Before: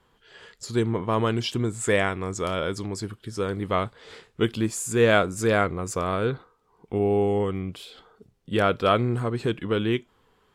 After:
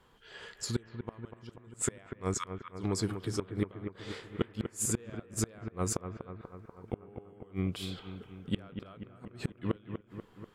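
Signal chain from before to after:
gate with flip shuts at −18 dBFS, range −33 dB
0:02.34–0:02.74: linear-phase brick-wall high-pass 920 Hz
bucket-brigade delay 243 ms, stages 4,096, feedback 64%, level −8.5 dB

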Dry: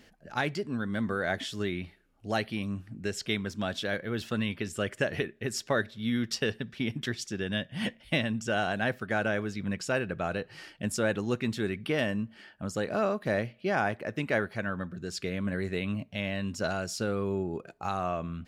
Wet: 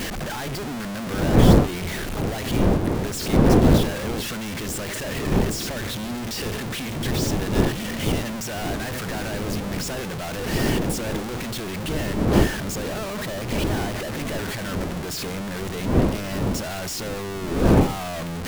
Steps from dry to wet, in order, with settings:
sign of each sample alone
wind on the microphone 320 Hz −26 dBFS
level +2 dB

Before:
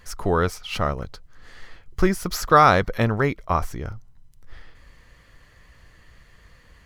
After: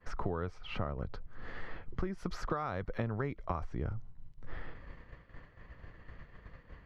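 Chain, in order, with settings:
downward expander −42 dBFS
downward compressor 12 to 1, threshold −32 dBFS, peak gain reduction 22.5 dB
head-to-tape spacing loss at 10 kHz 34 dB, from 0:02.17 at 10 kHz 22 dB, from 0:03.63 at 10 kHz 36 dB
multiband upward and downward compressor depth 40%
level +2 dB

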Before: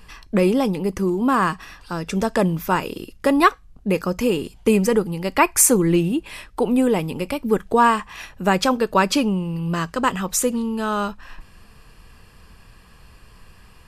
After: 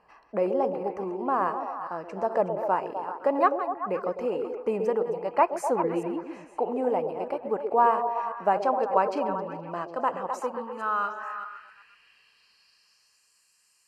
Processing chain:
delay that plays each chunk backwards 208 ms, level −11 dB
Butterworth band-reject 3,500 Hz, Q 5.1
band-pass filter sweep 720 Hz → 7,300 Hz, 0:10.20–0:13.32
echo through a band-pass that steps 127 ms, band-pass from 410 Hz, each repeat 0.7 octaves, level −3.5 dB

